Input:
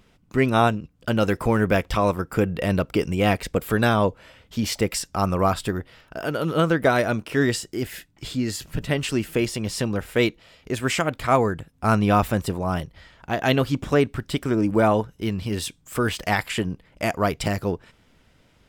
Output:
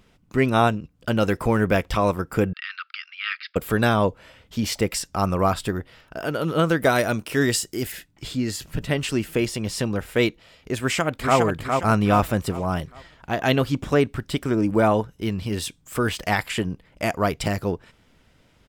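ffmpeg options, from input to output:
-filter_complex "[0:a]asettb=1/sr,asplit=3[s0][s1][s2];[s0]atrim=end=2.534[s3];[s1]atrim=start=2.53:end=3.56,asetpts=PTS-STARTPTS,afade=t=in:d=0.004:c=qsin,afade=t=out:st=1.026:d=0.004:c=qsin,asuperpass=centerf=2500:order=20:qfactor=0.66[s4];[s2]atrim=start=3.556[s5];[s3][s4]acrossfade=d=0.004:c1=hsin:c2=qsin[s6];[s6][s5]acrossfade=d=0.004:c1=qsin:c2=hsin,asettb=1/sr,asplit=3[s7][s8][s9];[s7]atrim=end=6.694[s10];[s8]atrim=start=6.69:end=7.92,asetpts=PTS-STARTPTS,afade=t=in:d=0.004:c=qsin,afade=t=out:st=1.226:d=0.004:c=qsin,aemphasis=mode=production:type=cd[s11];[s9]atrim=start=7.916[s12];[s10][s11]acrossfade=d=0.004:c1=hsin:c2=qsin[s13];[s13][s12]acrossfade=d=0.004:c1=qsin:c2=hsin,asplit=2[s14][s15];[s15]afade=t=in:st=10.78:d=0.01,afade=t=out:st=11.38:d=0.01,aecho=0:1:410|820|1230|1640|2050:0.630957|0.252383|0.100953|0.0403813|0.0161525[s16];[s14][s16]amix=inputs=2:normalize=0"

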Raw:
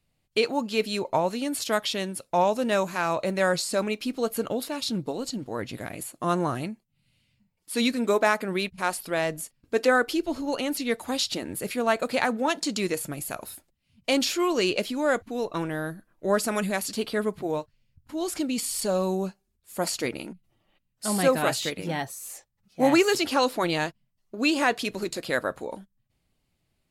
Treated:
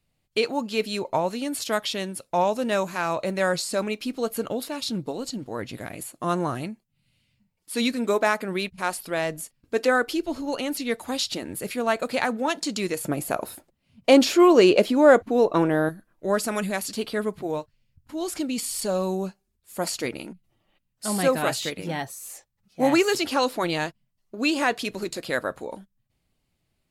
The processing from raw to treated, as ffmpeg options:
-filter_complex "[0:a]asettb=1/sr,asplit=3[s0][s1][s2];[s0]atrim=end=13.044[s3];[s1]atrim=start=13.04:end=15.89,asetpts=PTS-STARTPTS,afade=t=in:d=0.004:c=qsin,afade=t=out:st=2.846:d=0.004:c=qsin,equalizer=f=480:w=0.34:g=10.5[s4];[s2]atrim=start=15.886[s5];[s3][s4]acrossfade=d=0.004:c1=hsin:c2=qsin[s6];[s6][s5]acrossfade=d=0.004:c1=qsin:c2=hsin"

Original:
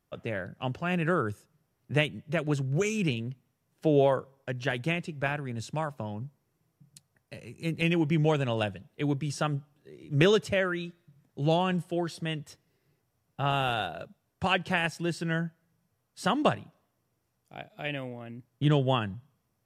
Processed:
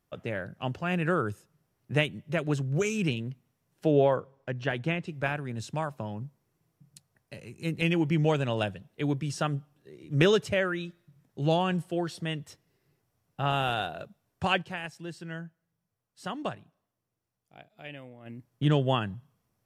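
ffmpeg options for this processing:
-filter_complex "[0:a]asettb=1/sr,asplit=3[s0][s1][s2];[s0]atrim=end=3.914[s3];[s1]atrim=start=3.91:end=5.07,asetpts=PTS-STARTPTS,afade=t=in:d=0.004:c=qsin,afade=t=out:st=1.156:d=0.004:c=qsin,aemphasis=mode=reproduction:type=50fm[s4];[s2]atrim=start=5.066[s5];[s3][s4]acrossfade=d=0.004:c1=hsin:c2=qsin[s6];[s6][s5]acrossfade=d=0.004:c1=qsin:c2=hsin,asplit=3[s7][s8][s9];[s7]atrim=end=14.83,asetpts=PTS-STARTPTS,afade=t=out:st=14.61:d=0.22:c=exp:silence=0.354813[s10];[s8]atrim=start=14.83:end=18.05,asetpts=PTS-STARTPTS,volume=0.355[s11];[s9]atrim=start=18.05,asetpts=PTS-STARTPTS,afade=t=in:d=0.22:c=exp:silence=0.354813[s12];[s10][s11][s12]concat=n=3:v=0:a=1"

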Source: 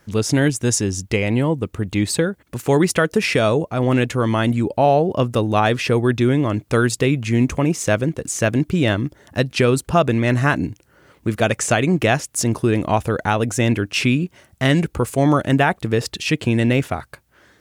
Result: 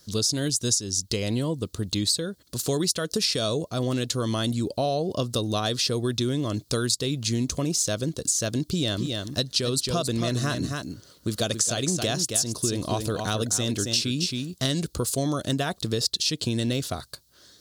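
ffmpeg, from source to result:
-filter_complex "[0:a]asettb=1/sr,asplit=3[s0][s1][s2];[s0]atrim=end=8.674[s3];[s1]atrim=start=8.67:end=14.66,asetpts=PTS-STARTPTS,afade=t=in:d=0.004:c=qsin,afade=t=out:st=5.986:d=0.004:c=qsin,aecho=1:1:271:0.398,atrim=end_sample=264159[s4];[s2]atrim=start=14.656[s5];[s3][s4]acrossfade=d=0.004:c1=hsin:c2=qsin[s6];[s6][s5]acrossfade=d=0.004:c1=qsin:c2=hsin,highshelf=f=3100:t=q:w=3:g=11,bandreject=f=850:w=5.3,acompressor=threshold=0.158:ratio=6,volume=0.531"

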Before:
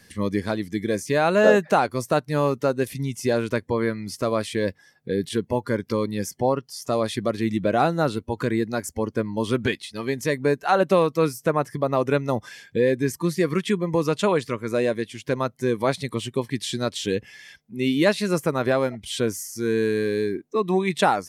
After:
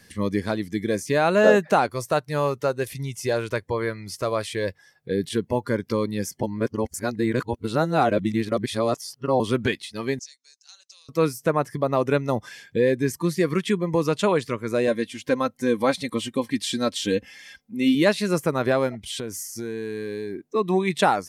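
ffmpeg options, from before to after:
-filter_complex "[0:a]asettb=1/sr,asplit=3[s0][s1][s2];[s0]atrim=end=1.894[s3];[s1]atrim=start=1.89:end=5.11,asetpts=PTS-STARTPTS,afade=t=in:d=0.004:c=qsin,afade=t=out:st=3.216:d=0.004:c=qsin,equalizer=f=240:t=o:w=0.84:g=-9.5[s4];[s2]atrim=start=5.106[s5];[s3][s4]acrossfade=d=0.004:c1=hsin:c2=qsin[s6];[s6][s5]acrossfade=d=0.004:c1=qsin:c2=hsin,asettb=1/sr,asplit=3[s7][s8][s9];[s7]atrim=end=10.194[s10];[s8]atrim=start=10.19:end=11.09,asetpts=PTS-STARTPTS,afade=t=in:d=0.004:c=qsin,afade=t=out:st=0.896:d=0.004:c=qsin,asuperpass=centerf=5800:order=4:qfactor=2.4[s11];[s9]atrim=start=11.086[s12];[s10][s11]acrossfade=d=0.004:c1=hsin:c2=qsin[s13];[s13][s12]acrossfade=d=0.004:c1=qsin:c2=hsin,asettb=1/sr,asplit=3[s14][s15][s16];[s14]atrim=end=14.874[s17];[s15]atrim=start=14.87:end=17.95,asetpts=PTS-STARTPTS,afade=t=in:d=0.004:c=qsin,afade=t=out:st=3.076:d=0.004:c=qsin,aecho=1:1:3.8:0.65,atrim=end_sample=135828[s18];[s16]atrim=start=17.946[s19];[s17][s18]acrossfade=d=0.004:c1=hsin:c2=qsin[s20];[s20][s19]acrossfade=d=0.004:c1=qsin:c2=hsin,asettb=1/sr,asplit=3[s21][s22][s23];[s21]atrim=end=19.044[s24];[s22]atrim=start=19.04:end=20.4,asetpts=PTS-STARTPTS,afade=t=in:d=0.004:c=qsin,afade=t=out:st=1.356:d=0.004:c=qsin,acompressor=threshold=0.0447:ratio=6:attack=3.2:release=140:knee=1:detection=peak[s25];[s23]atrim=start=20.396[s26];[s24][s25]acrossfade=d=0.004:c1=hsin:c2=qsin[s27];[s27][s26]acrossfade=d=0.004:c1=qsin:c2=hsin,asplit=3[s28][s29][s30];[s28]atrim=end=6.432[s31];[s29]atrim=start=6.428:end=9.402,asetpts=PTS-STARTPTS,areverse[s32];[s30]atrim=start=9.398[s33];[s31][s32]acrossfade=d=0.004:c1=hsin:c2=hsin[s34];[s34][s33]acrossfade=d=0.004:c1=hsin:c2=hsin"

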